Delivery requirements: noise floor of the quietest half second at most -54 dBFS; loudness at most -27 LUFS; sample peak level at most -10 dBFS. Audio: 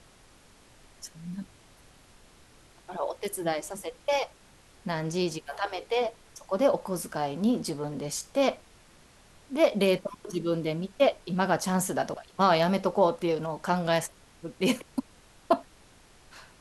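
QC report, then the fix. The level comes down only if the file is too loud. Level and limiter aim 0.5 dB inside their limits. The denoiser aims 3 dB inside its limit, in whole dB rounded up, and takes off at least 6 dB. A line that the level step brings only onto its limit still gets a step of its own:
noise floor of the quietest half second -56 dBFS: OK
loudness -28.5 LUFS: OK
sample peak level -9.0 dBFS: fail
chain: limiter -10.5 dBFS

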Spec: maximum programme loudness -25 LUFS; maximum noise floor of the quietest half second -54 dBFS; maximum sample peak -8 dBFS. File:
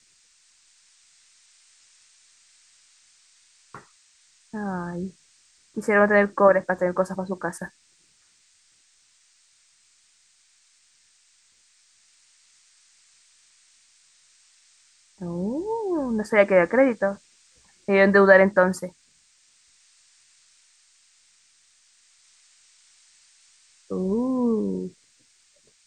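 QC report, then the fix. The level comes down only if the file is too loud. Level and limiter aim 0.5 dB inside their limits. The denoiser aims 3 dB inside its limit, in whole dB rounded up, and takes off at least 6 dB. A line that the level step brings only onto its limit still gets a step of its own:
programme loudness -21.5 LUFS: fail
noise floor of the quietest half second -61 dBFS: OK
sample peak -3.5 dBFS: fail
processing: gain -4 dB; limiter -8.5 dBFS

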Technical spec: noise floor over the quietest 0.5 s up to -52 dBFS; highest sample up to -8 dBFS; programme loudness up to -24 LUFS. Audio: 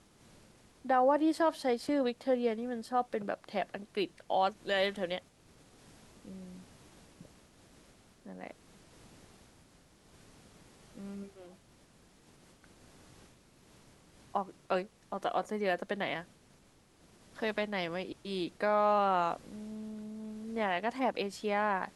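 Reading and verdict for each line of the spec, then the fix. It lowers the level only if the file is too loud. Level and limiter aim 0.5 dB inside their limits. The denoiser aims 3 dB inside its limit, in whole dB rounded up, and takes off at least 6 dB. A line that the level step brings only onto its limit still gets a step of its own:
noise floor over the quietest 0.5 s -63 dBFS: OK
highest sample -17.0 dBFS: OK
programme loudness -33.5 LUFS: OK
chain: none

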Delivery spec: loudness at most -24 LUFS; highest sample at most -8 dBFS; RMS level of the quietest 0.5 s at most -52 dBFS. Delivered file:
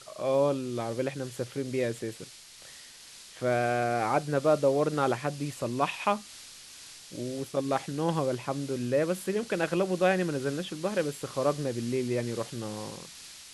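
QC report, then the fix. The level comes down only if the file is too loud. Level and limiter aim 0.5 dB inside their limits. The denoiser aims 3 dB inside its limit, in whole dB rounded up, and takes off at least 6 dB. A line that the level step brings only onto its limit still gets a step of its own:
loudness -30.0 LUFS: OK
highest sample -11.0 dBFS: OK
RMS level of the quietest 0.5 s -50 dBFS: fail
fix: denoiser 6 dB, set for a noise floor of -50 dBFS

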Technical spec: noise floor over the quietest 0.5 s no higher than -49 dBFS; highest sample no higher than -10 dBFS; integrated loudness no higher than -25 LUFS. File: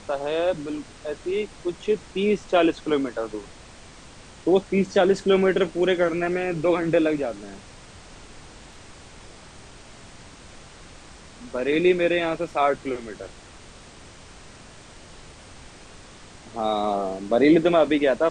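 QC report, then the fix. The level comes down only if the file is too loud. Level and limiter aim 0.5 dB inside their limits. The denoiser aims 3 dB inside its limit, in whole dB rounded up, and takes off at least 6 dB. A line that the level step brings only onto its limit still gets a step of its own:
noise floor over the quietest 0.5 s -45 dBFS: fail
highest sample -7.0 dBFS: fail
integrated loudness -23.0 LUFS: fail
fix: denoiser 6 dB, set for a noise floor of -45 dBFS; gain -2.5 dB; limiter -10.5 dBFS

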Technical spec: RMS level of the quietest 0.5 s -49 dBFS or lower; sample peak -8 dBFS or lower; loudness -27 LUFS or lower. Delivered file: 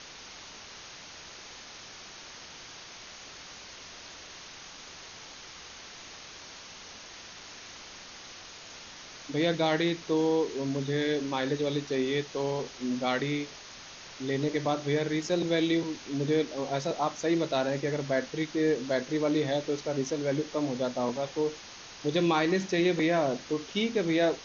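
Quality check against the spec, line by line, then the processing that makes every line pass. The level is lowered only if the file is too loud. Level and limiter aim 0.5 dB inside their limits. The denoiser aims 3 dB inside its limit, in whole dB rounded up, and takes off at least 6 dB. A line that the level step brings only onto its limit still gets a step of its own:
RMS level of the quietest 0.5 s -47 dBFS: fail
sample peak -13.5 dBFS: OK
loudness -29.5 LUFS: OK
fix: denoiser 6 dB, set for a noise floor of -47 dBFS

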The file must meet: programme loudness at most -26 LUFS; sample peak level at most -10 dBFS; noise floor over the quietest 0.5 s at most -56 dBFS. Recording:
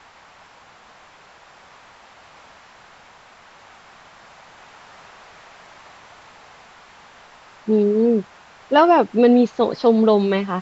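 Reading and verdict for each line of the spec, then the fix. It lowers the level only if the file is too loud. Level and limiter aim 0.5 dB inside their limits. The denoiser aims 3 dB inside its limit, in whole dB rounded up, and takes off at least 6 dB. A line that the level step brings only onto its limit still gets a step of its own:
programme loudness -17.0 LUFS: fail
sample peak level -2.5 dBFS: fail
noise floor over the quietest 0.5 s -48 dBFS: fail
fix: gain -9.5 dB

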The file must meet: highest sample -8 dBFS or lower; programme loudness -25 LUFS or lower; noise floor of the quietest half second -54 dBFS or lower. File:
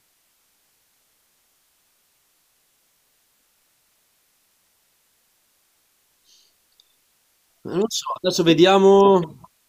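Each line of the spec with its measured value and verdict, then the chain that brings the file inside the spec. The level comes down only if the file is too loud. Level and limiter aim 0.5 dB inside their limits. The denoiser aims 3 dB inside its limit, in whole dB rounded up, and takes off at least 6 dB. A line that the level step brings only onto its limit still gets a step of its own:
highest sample -3.5 dBFS: fail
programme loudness -17.0 LUFS: fail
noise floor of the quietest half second -65 dBFS: OK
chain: gain -8.5 dB

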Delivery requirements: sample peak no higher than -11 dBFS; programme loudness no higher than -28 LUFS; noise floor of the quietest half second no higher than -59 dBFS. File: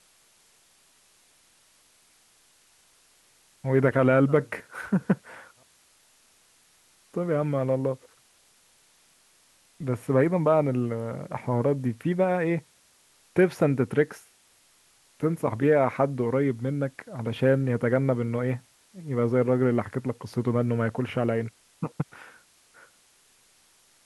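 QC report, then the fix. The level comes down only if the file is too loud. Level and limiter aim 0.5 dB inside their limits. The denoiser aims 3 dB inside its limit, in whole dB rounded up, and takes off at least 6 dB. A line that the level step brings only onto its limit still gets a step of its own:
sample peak -8.0 dBFS: fail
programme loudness -26.0 LUFS: fail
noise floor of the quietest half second -61 dBFS: OK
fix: gain -2.5 dB; limiter -11.5 dBFS

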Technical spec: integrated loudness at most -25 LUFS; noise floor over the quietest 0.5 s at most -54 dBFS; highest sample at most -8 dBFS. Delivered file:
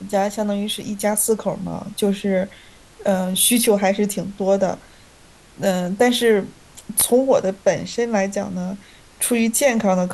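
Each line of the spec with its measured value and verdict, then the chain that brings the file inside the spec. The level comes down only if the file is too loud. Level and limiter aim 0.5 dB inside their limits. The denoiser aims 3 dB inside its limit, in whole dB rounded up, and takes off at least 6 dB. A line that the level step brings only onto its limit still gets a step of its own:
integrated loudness -19.5 LUFS: fail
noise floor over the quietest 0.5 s -48 dBFS: fail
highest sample -5.0 dBFS: fail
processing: denoiser 6 dB, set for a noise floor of -48 dBFS; gain -6 dB

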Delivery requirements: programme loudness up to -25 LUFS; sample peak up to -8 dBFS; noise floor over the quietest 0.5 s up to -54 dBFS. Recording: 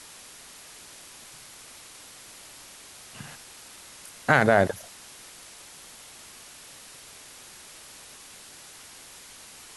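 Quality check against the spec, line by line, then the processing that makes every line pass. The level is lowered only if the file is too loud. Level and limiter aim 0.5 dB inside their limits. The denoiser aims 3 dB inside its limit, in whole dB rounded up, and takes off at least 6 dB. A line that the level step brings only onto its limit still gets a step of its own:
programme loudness -23.5 LUFS: fail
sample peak -5.5 dBFS: fail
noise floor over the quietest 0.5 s -47 dBFS: fail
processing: denoiser 8 dB, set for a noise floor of -47 dBFS; gain -2 dB; limiter -8.5 dBFS

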